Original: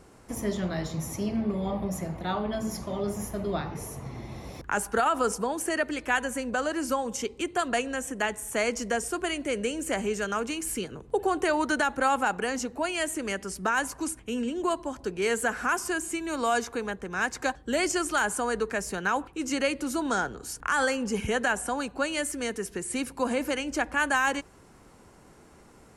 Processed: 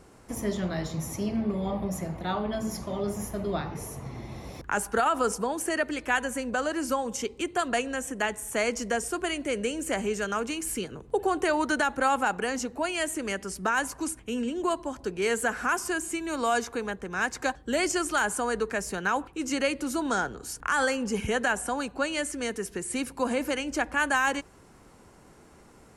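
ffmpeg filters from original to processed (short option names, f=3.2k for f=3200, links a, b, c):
-filter_complex "[0:a]asettb=1/sr,asplit=3[a][b][c];[a]atrim=end=21.974[d];[b]atrim=start=21.97:end=22.43,asetpts=PTS-STARTPTS,afade=t=in:d=0.004:c=qsin,afade=t=out:st=0.456:d=0.004:c=qsin,lowpass=9.5k[e];[c]atrim=start=22.426[f];[d][e]acrossfade=d=0.004:c1=hsin:c2=qsin[g];[g][f]acrossfade=d=0.004:c1=qsin:c2=hsin"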